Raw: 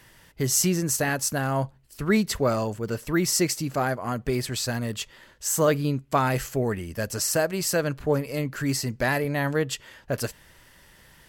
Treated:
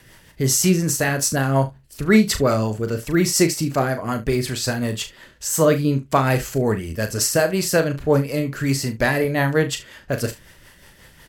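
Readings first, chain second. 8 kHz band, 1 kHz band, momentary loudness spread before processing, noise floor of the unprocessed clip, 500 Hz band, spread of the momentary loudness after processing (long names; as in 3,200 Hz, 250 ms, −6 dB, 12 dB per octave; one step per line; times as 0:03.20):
+4.0 dB, +4.0 dB, 9 LU, −55 dBFS, +5.5 dB, 9 LU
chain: rotating-speaker cabinet horn 5.5 Hz
on a send: ambience of single reflections 37 ms −9 dB, 72 ms −18 dB
on the sum: level +7 dB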